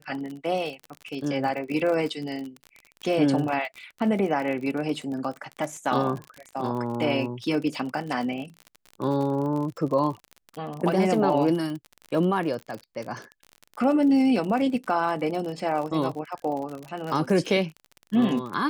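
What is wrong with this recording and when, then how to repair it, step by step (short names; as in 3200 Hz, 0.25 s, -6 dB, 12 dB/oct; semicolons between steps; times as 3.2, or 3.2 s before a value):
crackle 45/s -31 dBFS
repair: de-click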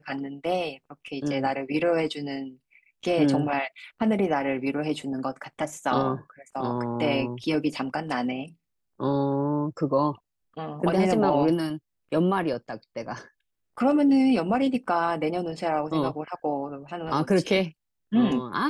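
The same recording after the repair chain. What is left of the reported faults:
none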